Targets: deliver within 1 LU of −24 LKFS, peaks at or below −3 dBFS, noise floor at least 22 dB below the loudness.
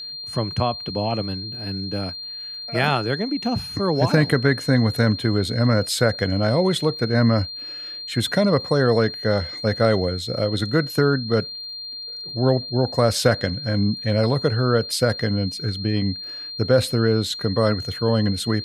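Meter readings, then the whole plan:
crackle rate 40 per second; interfering tone 4,200 Hz; level of the tone −31 dBFS; integrated loudness −21.5 LKFS; sample peak −3.5 dBFS; target loudness −24.0 LKFS
→ click removal
notch filter 4,200 Hz, Q 30
level −2.5 dB

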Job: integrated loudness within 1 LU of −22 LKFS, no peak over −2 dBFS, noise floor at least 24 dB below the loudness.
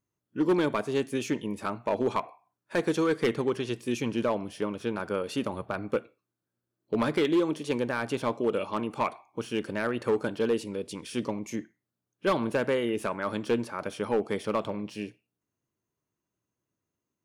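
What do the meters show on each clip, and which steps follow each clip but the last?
share of clipped samples 0.7%; peaks flattened at −19.0 dBFS; integrated loudness −30.0 LKFS; sample peak −19.0 dBFS; target loudness −22.0 LKFS
→ clipped peaks rebuilt −19 dBFS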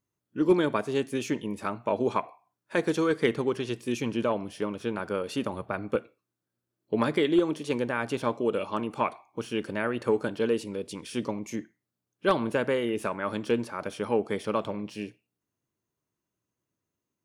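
share of clipped samples 0.0%; integrated loudness −29.5 LKFS; sample peak −10.0 dBFS; target loudness −22.0 LKFS
→ level +7.5 dB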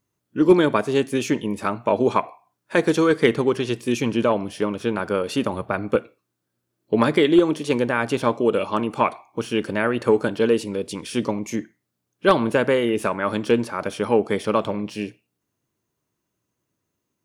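integrated loudness −22.0 LKFS; sample peak −2.5 dBFS; background noise floor −79 dBFS

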